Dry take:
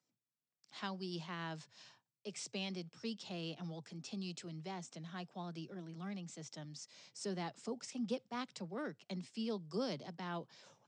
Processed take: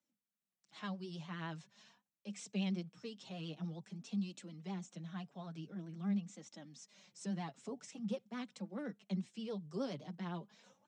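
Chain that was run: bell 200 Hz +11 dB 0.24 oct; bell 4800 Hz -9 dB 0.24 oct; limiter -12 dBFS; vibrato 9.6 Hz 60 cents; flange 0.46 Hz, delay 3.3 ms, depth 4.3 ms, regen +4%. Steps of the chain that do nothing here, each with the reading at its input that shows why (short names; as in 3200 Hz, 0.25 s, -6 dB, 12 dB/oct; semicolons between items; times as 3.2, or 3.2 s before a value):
limiter -12 dBFS: input peak -23.5 dBFS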